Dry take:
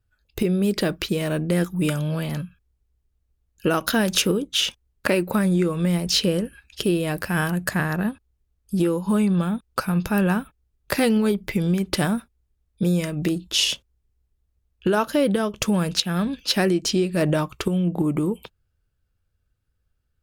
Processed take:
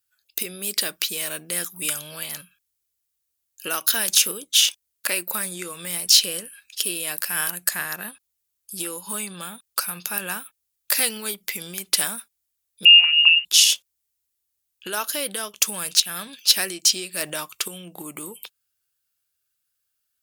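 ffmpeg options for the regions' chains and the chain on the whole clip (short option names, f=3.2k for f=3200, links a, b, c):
-filter_complex "[0:a]asettb=1/sr,asplit=3[a][b][c];[a]atrim=end=12.854[d];[b]atrim=start=12.85:end=13.45,asetpts=PTS-STARTPTS,afade=t=in:d=0.004:c=qsin,afade=t=out:st=0.596:d=0.004:c=qsin,lowshelf=f=260:g=11.5,aeval=exprs='sgn(val(0))*max(abs(val(0))-0.00631,0)':c=same,lowpass=f=2.6k:t=q:w=0.5098,lowpass=f=2.6k:t=q:w=0.6013,lowpass=f=2.6k:t=q:w=0.9,lowpass=f=2.6k:t=q:w=2.563,afreqshift=-3000[e];[c]atrim=start=13.446[f];[d][e]acrossfade=d=0.004:c1=hsin:c2=qsin[g];[g][f]acrossfade=d=0.004:c1=qsin:c2=hsin,aderivative,alimiter=level_in=12dB:limit=-1dB:release=50:level=0:latency=1,volume=-1dB"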